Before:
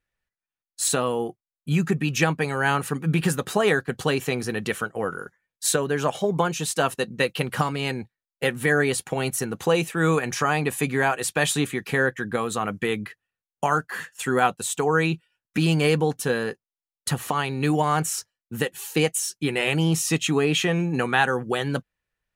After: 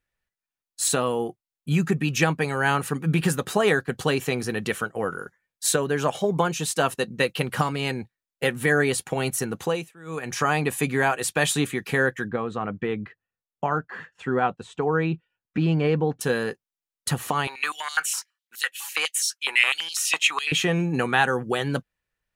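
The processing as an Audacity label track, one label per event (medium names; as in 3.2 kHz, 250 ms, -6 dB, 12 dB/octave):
9.550000	10.420000	dip -23 dB, fades 0.37 s
12.280000	16.210000	tape spacing loss at 10 kHz 31 dB
17.470000	20.520000	step-sequenced high-pass 12 Hz 960–4200 Hz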